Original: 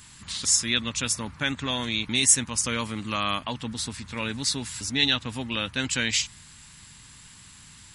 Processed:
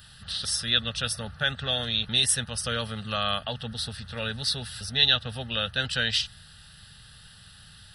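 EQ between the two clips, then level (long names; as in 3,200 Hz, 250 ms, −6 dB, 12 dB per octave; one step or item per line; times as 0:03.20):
phaser with its sweep stopped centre 1,500 Hz, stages 8
+3.0 dB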